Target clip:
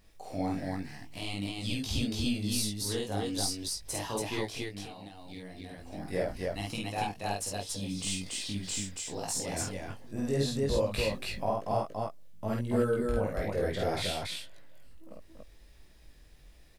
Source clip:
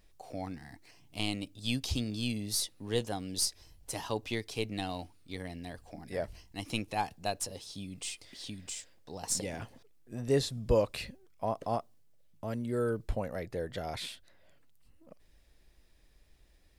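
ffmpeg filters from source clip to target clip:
ffmpeg -i in.wav -filter_complex "[0:a]asettb=1/sr,asplit=3[link_01][link_02][link_03];[link_01]atrim=end=10.874[link_04];[link_02]atrim=start=10.87:end=11.54,asetpts=PTS-STARTPTS,afade=type=in:duration=0.004:curve=qsin,afade=type=out:start_time=0.666:duration=0.004:curve=qsin,acontrast=37[link_05];[link_03]atrim=start=11.536[link_06];[link_04][link_05]acrossfade=duration=0.004:curve1=hsin:curve2=qsin[link_07];[link_07][link_06]acrossfade=duration=0.004:curve1=qsin:curve2=hsin,alimiter=level_in=2dB:limit=-24dB:level=0:latency=1:release=386,volume=-2dB,asettb=1/sr,asplit=3[link_08][link_09][link_10];[link_08]atrim=end=4.554[link_11];[link_09]atrim=start=4.55:end=5.8,asetpts=PTS-STARTPTS,afade=type=in:duration=0.004:curve=qsin,afade=type=out:start_time=1.246:duration=0.004:curve=qsin,acompressor=threshold=-48dB:ratio=5[link_12];[link_10]atrim=start=5.796[link_13];[link_11][link_12]acrossfade=duration=0.004:curve1=hsin:curve2=qsin[link_14];[link_14][link_13]acrossfade=duration=0.004:curve1=qsin:curve2=hsin,flanger=delay=18.5:depth=3.3:speed=1.2,aecho=1:1:49.56|282.8:0.891|0.891,volume=6dB" out.wav

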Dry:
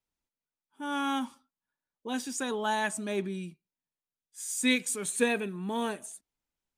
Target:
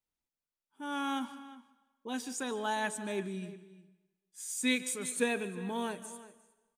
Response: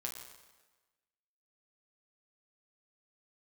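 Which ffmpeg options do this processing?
-filter_complex "[0:a]asplit=2[link_01][link_02];[link_02]adelay=355.7,volume=-16dB,highshelf=frequency=4000:gain=-8[link_03];[link_01][link_03]amix=inputs=2:normalize=0,asplit=2[link_04][link_05];[1:a]atrim=start_sample=2205,adelay=148[link_06];[link_05][link_06]afir=irnorm=-1:irlink=0,volume=-14.5dB[link_07];[link_04][link_07]amix=inputs=2:normalize=0,volume=-4dB"

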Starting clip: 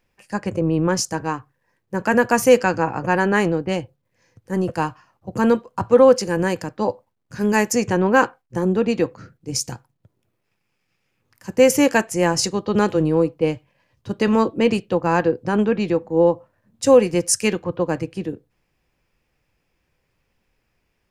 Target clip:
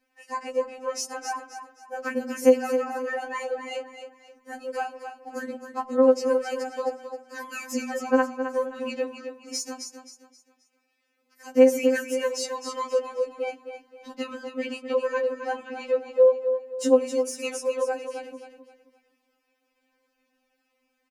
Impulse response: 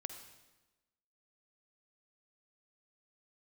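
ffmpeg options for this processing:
-filter_complex "[0:a]bandreject=frequency=82.13:width_type=h:width=4,bandreject=frequency=164.26:width_type=h:width=4,bandreject=frequency=246.39:width_type=h:width=4,bandreject=frequency=328.52:width_type=h:width=4,acompressor=threshold=-24dB:ratio=3,highpass=51,aecho=1:1:264|528|792|1056:0.355|0.117|0.0386|0.0128,deesser=0.45,asplit=2[link_01][link_02];[1:a]atrim=start_sample=2205,lowpass=3200[link_03];[link_02][link_03]afir=irnorm=-1:irlink=0,volume=-11dB[link_04];[link_01][link_04]amix=inputs=2:normalize=0,afftfilt=real='re*3.46*eq(mod(b,12),0)':imag='im*3.46*eq(mod(b,12),0)':win_size=2048:overlap=0.75"

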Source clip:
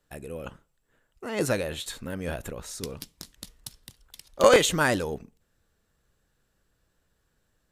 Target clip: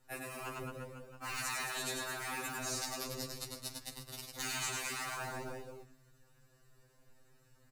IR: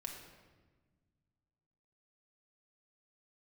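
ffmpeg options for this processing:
-filter_complex "[0:a]acrossover=split=430|1400[link_01][link_02][link_03];[link_01]aeval=exprs='0.0251*(abs(mod(val(0)/0.0251+3,4)-2)-1)':channel_layout=same[link_04];[link_04][link_02][link_03]amix=inputs=3:normalize=0,acrossover=split=97|290|1400|5700[link_05][link_06][link_07][link_08][link_09];[link_05]acompressor=threshold=-47dB:ratio=4[link_10];[link_06]acompressor=threshold=-48dB:ratio=4[link_11];[link_07]acompressor=threshold=-32dB:ratio=4[link_12];[link_08]acompressor=threshold=-42dB:ratio=4[link_13];[link_09]acompressor=threshold=-47dB:ratio=4[link_14];[link_10][link_11][link_12][link_13][link_14]amix=inputs=5:normalize=0,aecho=1:1:100|215|347.2|499.3|674.2:0.631|0.398|0.251|0.158|0.1,asplit=2[link_15][link_16];[link_16]acrusher=samples=41:mix=1:aa=0.000001:lfo=1:lforange=41:lforate=0.67,volume=-8.5dB[link_17];[link_15][link_17]amix=inputs=2:normalize=0,afftfilt=real='re*lt(hypot(re,im),0.0398)':imag='im*lt(hypot(re,im),0.0398)':win_size=1024:overlap=0.75,bandreject=frequency=3300:width=5,afftfilt=real='re*2.45*eq(mod(b,6),0)':imag='im*2.45*eq(mod(b,6),0)':win_size=2048:overlap=0.75,volume=5dB"

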